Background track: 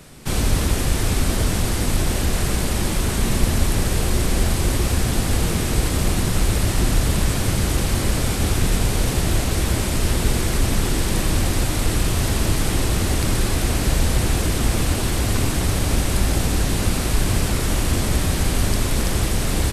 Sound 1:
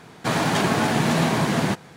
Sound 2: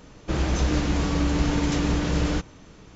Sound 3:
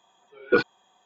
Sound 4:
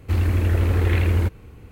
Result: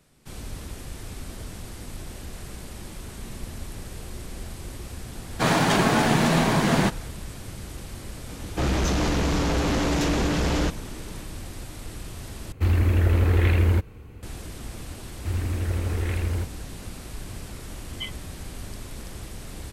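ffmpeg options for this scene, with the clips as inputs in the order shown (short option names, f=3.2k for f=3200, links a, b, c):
-filter_complex "[4:a]asplit=2[a][b];[0:a]volume=-17.5dB[c];[1:a]dynaudnorm=f=160:g=3:m=11.5dB[d];[2:a]aeval=exprs='0.299*sin(PI/2*3.55*val(0)/0.299)':c=same[e];[3:a]lowpass=f=3k:t=q:w=0.5098,lowpass=f=3k:t=q:w=0.6013,lowpass=f=3k:t=q:w=0.9,lowpass=f=3k:t=q:w=2.563,afreqshift=-3500[f];[c]asplit=2[g][h];[g]atrim=end=12.524[i];[a]atrim=end=1.71,asetpts=PTS-STARTPTS,volume=-0.5dB[j];[h]atrim=start=14.226[k];[d]atrim=end=1.96,asetpts=PTS-STARTPTS,volume=-6.5dB,afade=t=in:d=0.004:c=hsin,afade=t=out:st=1.956:d=0.004:c=hsin,adelay=5150[l];[e]atrim=end=2.95,asetpts=PTS-STARTPTS,volume=-9.5dB,afade=t=in:d=0.004:c=hsin,afade=t=out:st=2.946:d=0.004:c=hsin,adelay=8290[m];[b]atrim=end=1.71,asetpts=PTS-STARTPTS,volume=-7.5dB,afade=t=in:d=0.004:c=hsin,afade=t=out:st=1.706:d=0.004:c=hsin,adelay=15160[n];[f]atrim=end=1.05,asetpts=PTS-STARTPTS,volume=-15.5dB,afade=t=in:d=0.004:c=hsin,afade=t=out:st=1.046:d=0.004:c=hsin,adelay=770868S[o];[i][j]acrossfade=d=0.004:c1=hsin:c2=hsin[p];[p][k]acrossfade=d=0.004:c1=hsin:c2=hsin[q];[q][l][m][n][o]amix=inputs=5:normalize=0"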